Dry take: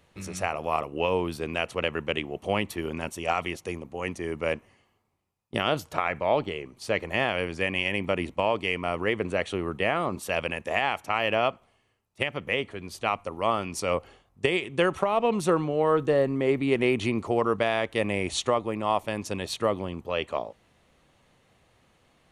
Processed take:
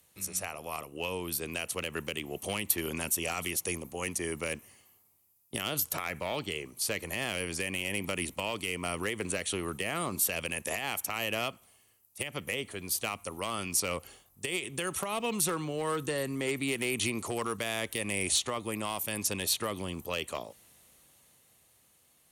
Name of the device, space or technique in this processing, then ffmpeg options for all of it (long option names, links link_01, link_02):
FM broadcast chain: -filter_complex "[0:a]highpass=44,dynaudnorm=framelen=160:gausssize=21:maxgain=11.5dB,acrossover=split=420|1100|4600[link_01][link_02][link_03][link_04];[link_01]acompressor=threshold=-23dB:ratio=4[link_05];[link_02]acompressor=threshold=-32dB:ratio=4[link_06];[link_03]acompressor=threshold=-23dB:ratio=4[link_07];[link_04]acompressor=threshold=-40dB:ratio=4[link_08];[link_05][link_06][link_07][link_08]amix=inputs=4:normalize=0,aemphasis=mode=production:type=50fm,alimiter=limit=-12dB:level=0:latency=1:release=129,asoftclip=type=hard:threshold=-15.5dB,lowpass=frequency=15000:width=0.5412,lowpass=frequency=15000:width=1.3066,aemphasis=mode=production:type=50fm,volume=-9dB"